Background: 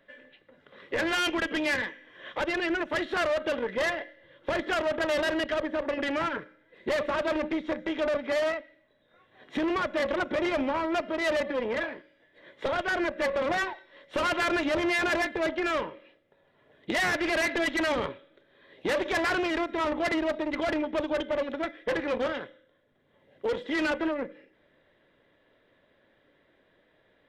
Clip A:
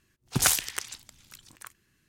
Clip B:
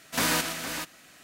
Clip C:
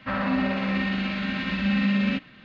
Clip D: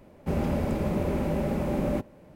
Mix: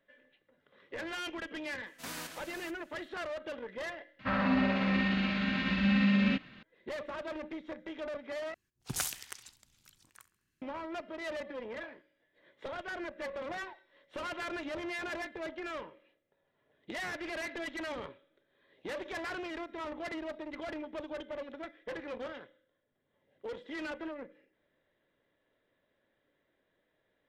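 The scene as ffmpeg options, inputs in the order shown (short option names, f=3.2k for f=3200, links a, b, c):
-filter_complex "[0:a]volume=-12dB[a];[1:a]aecho=1:1:68|136|204|272:0.126|0.0579|0.0266|0.0123[b];[a]asplit=3[c][d][e];[c]atrim=end=4.194[f];[3:a]atrim=end=2.44,asetpts=PTS-STARTPTS,volume=-3.5dB[g];[d]atrim=start=6.626:end=8.544[h];[b]atrim=end=2.08,asetpts=PTS-STARTPTS,volume=-12dB[i];[e]atrim=start=10.616[j];[2:a]atrim=end=1.23,asetpts=PTS-STARTPTS,volume=-16.5dB,afade=t=in:d=0.004:c=hsin,afade=t=out:st=1.226:d=0.004:c=hsin,adelay=1860[k];[f][g]acrossfade=d=0.004:c1=hsin:c2=hsin[l];[l][h]acrossfade=d=0.004:c1=hsin:c2=hsin[m];[m][i]acrossfade=d=0.004:c1=hsin:c2=hsin[n];[n][j]acrossfade=d=0.004:c1=hsin:c2=hsin[o];[o][k]amix=inputs=2:normalize=0"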